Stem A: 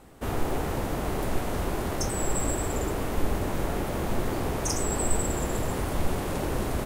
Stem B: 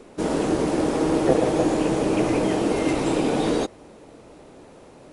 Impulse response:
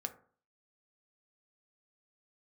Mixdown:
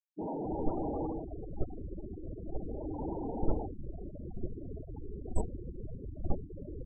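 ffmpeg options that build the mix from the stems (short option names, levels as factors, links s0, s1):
-filter_complex "[0:a]highshelf=f=3500:g=-10.5,agate=range=0.355:threshold=0.0794:ratio=16:detection=peak,adelay=250,volume=0.794[s0];[1:a]firequalizer=gain_entry='entry(570,0);entry(860,8);entry(1500,-12);entry(3400,-28);entry(5200,-16)':delay=0.05:min_phase=1,asoftclip=type=tanh:threshold=0.0447,volume=1.68,afade=t=out:st=1.05:d=0.25:silence=0.223872,afade=t=in:st=2.55:d=0.53:silence=0.298538[s1];[s0][s1]amix=inputs=2:normalize=0,afftfilt=real='re*gte(hypot(re,im),0.0398)':imag='im*gte(hypot(re,im),0.0398)':win_size=1024:overlap=0.75"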